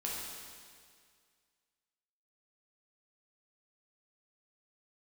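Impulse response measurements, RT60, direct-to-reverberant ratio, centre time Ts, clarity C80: 2.0 s, -5.0 dB, 0.111 s, 1.0 dB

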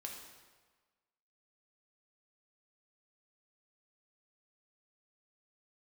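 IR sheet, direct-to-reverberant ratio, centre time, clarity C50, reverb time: 0.0 dB, 50 ms, 3.5 dB, 1.4 s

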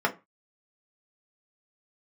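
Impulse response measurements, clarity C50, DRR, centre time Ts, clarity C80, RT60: 17.5 dB, -1.0 dB, 8 ms, 24.5 dB, 0.25 s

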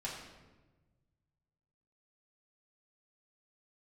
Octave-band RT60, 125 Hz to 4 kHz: 2.4, 1.6, 1.4, 1.1, 1.0, 0.80 s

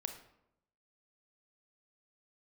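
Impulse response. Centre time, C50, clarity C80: 16 ms, 8.5 dB, 11.5 dB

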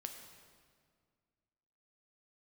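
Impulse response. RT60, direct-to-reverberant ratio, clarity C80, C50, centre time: 1.9 s, 4.0 dB, 7.0 dB, 6.0 dB, 38 ms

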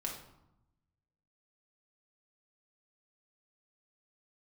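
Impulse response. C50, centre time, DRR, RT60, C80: 5.5 dB, 31 ms, -1.0 dB, 0.85 s, 9.0 dB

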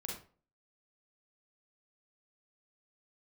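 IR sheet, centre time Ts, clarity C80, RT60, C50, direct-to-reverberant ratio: 38 ms, 9.0 dB, 0.40 s, 2.5 dB, -2.0 dB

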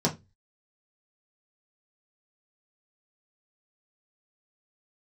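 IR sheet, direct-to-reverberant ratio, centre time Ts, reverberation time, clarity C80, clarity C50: -3.5 dB, 13 ms, 0.20 s, 25.0 dB, 16.0 dB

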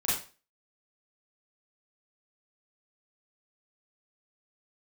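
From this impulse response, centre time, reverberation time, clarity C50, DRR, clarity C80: 50 ms, 0.35 s, 2.5 dB, -9.5 dB, 8.5 dB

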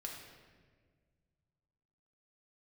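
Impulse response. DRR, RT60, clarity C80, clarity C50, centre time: -1.0 dB, 1.6 s, 4.5 dB, 2.5 dB, 59 ms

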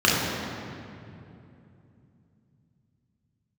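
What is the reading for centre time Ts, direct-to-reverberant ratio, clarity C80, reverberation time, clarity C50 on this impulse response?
0.137 s, -6.0 dB, 0.5 dB, 2.8 s, -1.5 dB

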